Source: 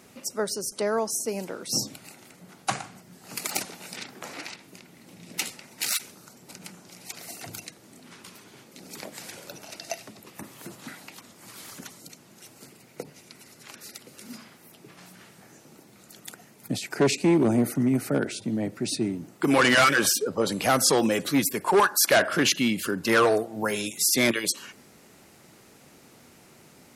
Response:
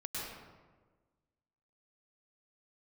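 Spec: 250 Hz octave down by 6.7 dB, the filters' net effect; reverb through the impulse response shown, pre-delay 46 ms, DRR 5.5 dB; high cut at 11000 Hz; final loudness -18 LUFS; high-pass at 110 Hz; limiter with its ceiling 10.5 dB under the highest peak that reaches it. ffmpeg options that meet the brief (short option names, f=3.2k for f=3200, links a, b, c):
-filter_complex "[0:a]highpass=110,lowpass=11k,equalizer=f=250:t=o:g=-8.5,alimiter=limit=-19.5dB:level=0:latency=1,asplit=2[a][b];[1:a]atrim=start_sample=2205,adelay=46[c];[b][c]afir=irnorm=-1:irlink=0,volume=-7.5dB[d];[a][d]amix=inputs=2:normalize=0,volume=12.5dB"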